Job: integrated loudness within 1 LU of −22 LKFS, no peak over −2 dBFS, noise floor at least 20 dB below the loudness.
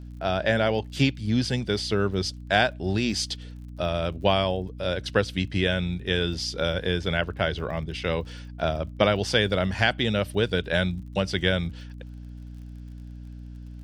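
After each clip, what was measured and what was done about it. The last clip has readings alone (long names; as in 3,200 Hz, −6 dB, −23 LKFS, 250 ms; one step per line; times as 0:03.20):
crackle rate 42 per second; mains hum 60 Hz; hum harmonics up to 300 Hz; level of the hum −38 dBFS; integrated loudness −26.0 LKFS; sample peak −4.5 dBFS; target loudness −22.0 LKFS
→ click removal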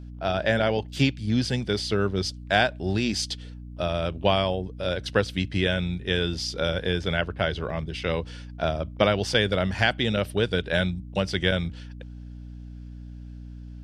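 crackle rate 0.22 per second; mains hum 60 Hz; hum harmonics up to 300 Hz; level of the hum −38 dBFS
→ hum removal 60 Hz, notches 5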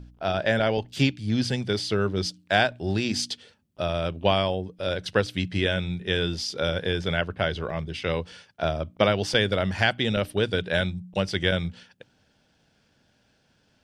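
mains hum none found; integrated loudness −26.0 LKFS; sample peak −4.5 dBFS; target loudness −22.0 LKFS
→ level +4 dB
brickwall limiter −2 dBFS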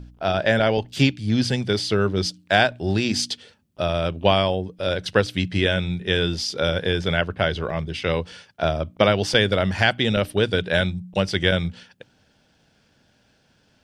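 integrated loudness −22.0 LKFS; sample peak −2.0 dBFS; background noise floor −62 dBFS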